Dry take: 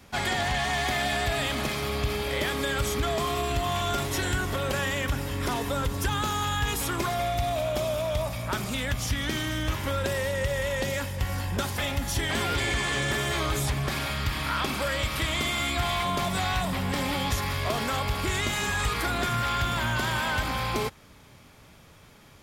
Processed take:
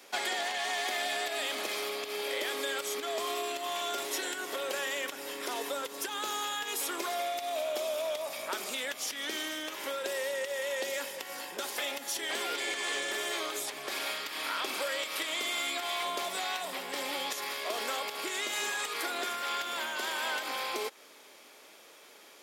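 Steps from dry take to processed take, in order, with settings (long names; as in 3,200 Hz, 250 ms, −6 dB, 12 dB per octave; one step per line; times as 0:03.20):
parametric band 1,100 Hz −5 dB 1.9 octaves
downward compressor, threshold −32 dBFS, peak gain reduction 10 dB
high-pass filter 370 Hz 24 dB per octave
level +3.5 dB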